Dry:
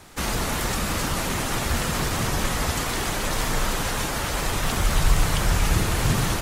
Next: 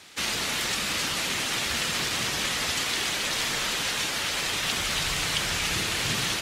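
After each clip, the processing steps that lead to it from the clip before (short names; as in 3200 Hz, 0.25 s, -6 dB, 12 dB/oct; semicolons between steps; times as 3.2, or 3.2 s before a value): weighting filter D; gain -6.5 dB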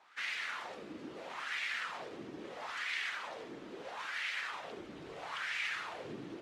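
wah 0.76 Hz 300–2100 Hz, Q 3; gain -2.5 dB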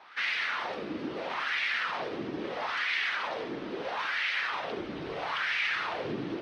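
in parallel at +1.5 dB: limiter -36 dBFS, peak gain reduction 10 dB; on the sum: polynomial smoothing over 15 samples; gain +4 dB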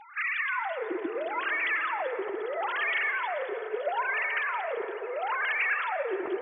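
sine-wave speech; reverb RT60 3.8 s, pre-delay 78 ms, DRR 9 dB; gain +2 dB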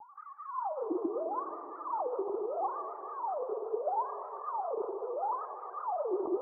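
rippled Chebyshev low-pass 1200 Hz, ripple 3 dB; vibrato 5.2 Hz 86 cents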